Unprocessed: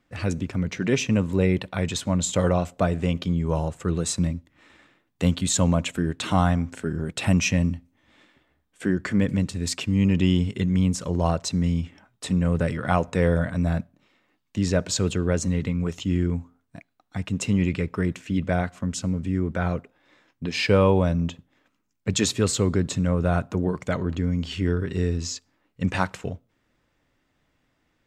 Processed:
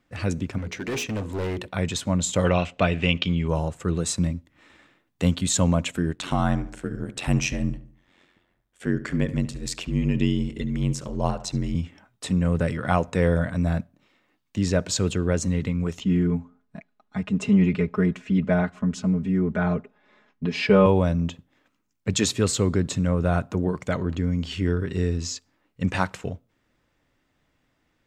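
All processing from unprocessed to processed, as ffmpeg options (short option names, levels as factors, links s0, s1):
-filter_complex "[0:a]asettb=1/sr,asplit=3[s0][s1][s2];[s0]atrim=end=0.584[s3];[s1]atrim=start=0.58:end=1.68,asetpts=PTS-STARTPTS,afade=t=in:d=0.004:c=qsin,afade=t=out:st=1.096:d=0.004:c=qsin,equalizer=f=170:w=2:g=-9.5,bandreject=f=60:t=h:w=6,bandreject=f=120:t=h:w=6,bandreject=f=180:t=h:w=6,bandreject=f=240:t=h:w=6,bandreject=f=300:t=h:w=6,bandreject=f=360:t=h:w=6,bandreject=f=420:t=h:w=6,bandreject=f=480:t=h:w=6,volume=17.8,asoftclip=hard,volume=0.0562[s4];[s2]atrim=start=1.676[s5];[s3][s4]acrossfade=d=0.004:c1=hsin:c2=qsin[s6];[s6][s5]acrossfade=d=0.004:c1=qsin:c2=hsin,asettb=1/sr,asplit=3[s7][s8][s9];[s7]atrim=end=2.454[s10];[s8]atrim=start=2.45:end=3.48,asetpts=PTS-STARTPTS,afade=t=in:d=0.004:c=qsin,afade=t=out:st=1.026:d=0.004:c=qsin,lowpass=5800,equalizer=f=2700:w=1.4:g=15[s11];[s9]atrim=start=3.476[s12];[s10][s11]acrossfade=d=0.004:c1=hsin:c2=qsin[s13];[s13][s12]acrossfade=d=0.004:c1=qsin:c2=hsin,asettb=1/sr,asplit=3[s14][s15][s16];[s14]atrim=end=6.134[s17];[s15]atrim=start=6.13:end=11.75,asetpts=PTS-STARTPTS,afade=t=in:d=0.004:c=qsin,afade=t=out:st=5.616:d=0.004:c=qsin,aeval=exprs='val(0)*sin(2*PI*45*n/s)':c=same,asplit=2[s18][s19];[s19]adelay=72,lowpass=f=2600:p=1,volume=0.2,asplit=2[s20][s21];[s21]adelay=72,lowpass=f=2600:p=1,volume=0.44,asplit=2[s22][s23];[s23]adelay=72,lowpass=f=2600:p=1,volume=0.44,asplit=2[s24][s25];[s25]adelay=72,lowpass=f=2600:p=1,volume=0.44[s26];[s18][s20][s22][s24][s26]amix=inputs=5:normalize=0,atrim=end_sample=247842[s27];[s16]atrim=start=11.746[s28];[s17][s27]acrossfade=d=0.004:c1=hsin:c2=qsin[s29];[s29][s28]acrossfade=d=0.004:c1=qsin:c2=hsin,asettb=1/sr,asplit=3[s30][s31][s32];[s30]atrim=end=16.004[s33];[s31]atrim=start=16:end=20.86,asetpts=PTS-STARTPTS,afade=t=in:d=0.004:c=qsin,afade=t=out:st=4.856:d=0.004:c=qsin,aemphasis=mode=reproduction:type=75kf,aecho=1:1:4.8:0.94,atrim=end_sample=214326[s34];[s32]atrim=start=20.856[s35];[s33][s34]acrossfade=d=0.004:c1=hsin:c2=qsin[s36];[s36][s35]acrossfade=d=0.004:c1=qsin:c2=hsin"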